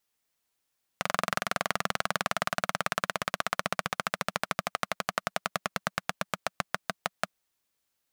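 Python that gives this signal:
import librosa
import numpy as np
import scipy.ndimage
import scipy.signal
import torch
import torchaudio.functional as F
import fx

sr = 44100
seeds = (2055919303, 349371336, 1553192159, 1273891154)

y = fx.engine_single_rev(sr, seeds[0], length_s=6.39, rpm=2700, resonances_hz=(190.0, 670.0, 1200.0), end_rpm=600)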